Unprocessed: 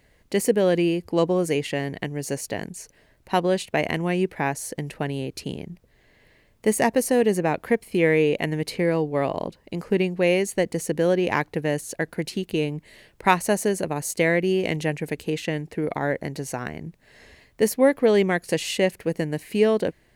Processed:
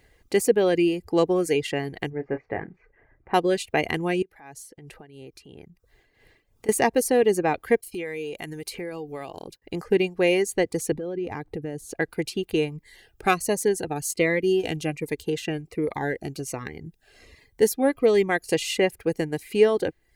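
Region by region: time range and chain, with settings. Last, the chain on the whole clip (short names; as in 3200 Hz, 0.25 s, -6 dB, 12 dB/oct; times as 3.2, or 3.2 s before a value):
2.1–3.34 block floating point 5-bit + Chebyshev low-pass 2100 Hz, order 4 + doubler 32 ms -8 dB
4.22–6.69 compressor 4:1, threshold -39 dBFS + tremolo 2.9 Hz, depth 57%
7.81–9.62 expander -43 dBFS + high shelf 4700 Hz +12 dB + compressor 3:1, threshold -33 dBFS
10.92–11.96 tilt shelf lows +6.5 dB, about 670 Hz + compressor 4:1, threshold -28 dBFS
12.71–18.29 de-esser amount 30% + cascading phaser falling 1.3 Hz
whole clip: reverb removal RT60 0.55 s; comb 2.5 ms, depth 39%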